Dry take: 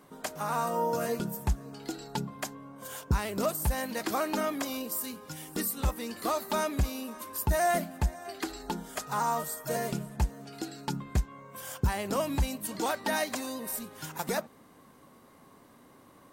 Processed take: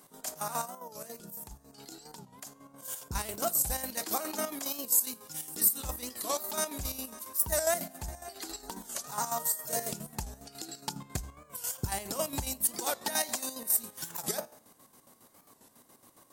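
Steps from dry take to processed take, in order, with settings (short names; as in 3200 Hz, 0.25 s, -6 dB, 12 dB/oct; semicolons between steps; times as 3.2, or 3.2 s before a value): 0.65–3.07 compressor 4:1, threshold -39 dBFS, peak gain reduction 14 dB; tone controls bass -1 dB, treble +14 dB; resonator 110 Hz, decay 0.65 s, harmonics all, mix 40%; de-hum 66.92 Hz, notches 22; chopper 7.3 Hz, depth 60%, duty 50%; bell 750 Hz +3.5 dB 0.66 oct; record warp 45 rpm, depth 160 cents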